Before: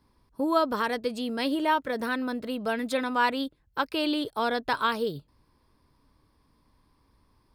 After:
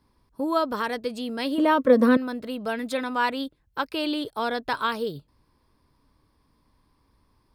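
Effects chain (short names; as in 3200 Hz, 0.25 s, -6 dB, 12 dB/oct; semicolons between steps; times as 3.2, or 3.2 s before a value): 1.58–2.17 small resonant body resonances 250/500/1100 Hz, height 17 dB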